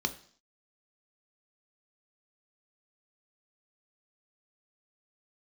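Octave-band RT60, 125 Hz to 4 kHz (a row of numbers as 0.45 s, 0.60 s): 0.50 s, 0.55 s, 0.50 s, 0.50 s, 0.50 s, 0.65 s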